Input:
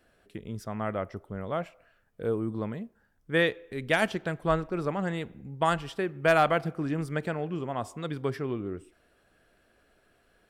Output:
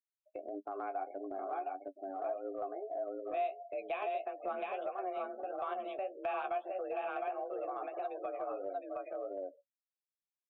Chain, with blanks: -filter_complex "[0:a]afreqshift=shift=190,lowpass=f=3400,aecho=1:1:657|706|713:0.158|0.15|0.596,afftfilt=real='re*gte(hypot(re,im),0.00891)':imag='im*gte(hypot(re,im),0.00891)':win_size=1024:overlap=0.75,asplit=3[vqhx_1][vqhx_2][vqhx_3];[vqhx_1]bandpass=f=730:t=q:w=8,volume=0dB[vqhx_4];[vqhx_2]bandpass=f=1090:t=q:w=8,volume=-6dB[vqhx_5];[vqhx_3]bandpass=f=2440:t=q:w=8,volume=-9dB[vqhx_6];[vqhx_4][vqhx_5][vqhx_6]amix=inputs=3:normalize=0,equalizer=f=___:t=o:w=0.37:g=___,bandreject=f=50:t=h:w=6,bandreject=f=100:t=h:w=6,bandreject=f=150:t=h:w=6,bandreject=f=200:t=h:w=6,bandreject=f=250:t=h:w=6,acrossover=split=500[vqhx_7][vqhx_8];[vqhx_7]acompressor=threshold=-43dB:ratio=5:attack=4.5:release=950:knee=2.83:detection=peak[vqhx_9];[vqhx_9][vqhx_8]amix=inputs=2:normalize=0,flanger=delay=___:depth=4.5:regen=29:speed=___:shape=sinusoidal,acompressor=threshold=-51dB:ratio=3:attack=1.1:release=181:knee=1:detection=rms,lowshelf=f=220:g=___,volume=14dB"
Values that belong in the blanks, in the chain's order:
900, -9.5, 9.9, 1.6, 10